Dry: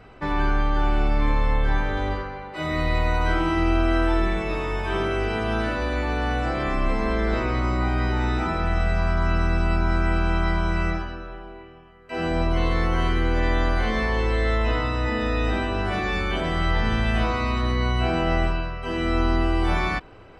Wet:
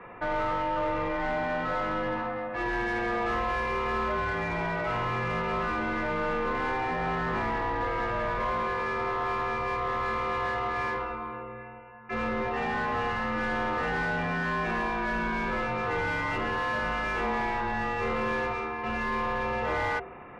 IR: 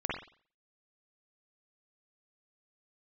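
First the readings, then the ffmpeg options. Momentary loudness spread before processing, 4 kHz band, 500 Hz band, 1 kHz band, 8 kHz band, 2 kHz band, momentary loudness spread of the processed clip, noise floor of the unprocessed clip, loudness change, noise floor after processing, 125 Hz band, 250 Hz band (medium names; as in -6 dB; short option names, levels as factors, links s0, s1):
5 LU, -8.5 dB, -3.5 dB, -0.5 dB, no reading, -1.5 dB, 3 LU, -45 dBFS, -5.0 dB, -43 dBFS, -13.0 dB, -8.5 dB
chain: -filter_complex "[0:a]bandreject=f=65.76:t=h:w=4,bandreject=f=131.52:t=h:w=4,bandreject=f=197.28:t=h:w=4,bandreject=f=263.04:t=h:w=4,bandreject=f=328.8:t=h:w=4,bandreject=f=394.56:t=h:w=4,bandreject=f=460.32:t=h:w=4,bandreject=f=526.08:t=h:w=4,bandreject=f=591.84:t=h:w=4,bandreject=f=657.6:t=h:w=4,bandreject=f=723.36:t=h:w=4,bandreject=f=789.12:t=h:w=4,bandreject=f=854.88:t=h:w=4,bandreject=f=920.64:t=h:w=4,bandreject=f=986.4:t=h:w=4,bandreject=f=1052.16:t=h:w=4,highpass=f=240:t=q:w=0.5412,highpass=f=240:t=q:w=1.307,lowpass=f=3000:t=q:w=0.5176,lowpass=f=3000:t=q:w=0.7071,lowpass=f=3000:t=q:w=1.932,afreqshift=-270,asoftclip=type=tanh:threshold=0.0841,asplit=2[s0][s1];[s1]highpass=f=720:p=1,volume=6.31,asoftclip=type=tanh:threshold=0.0841[s2];[s0][s2]amix=inputs=2:normalize=0,lowpass=f=1400:p=1,volume=0.501"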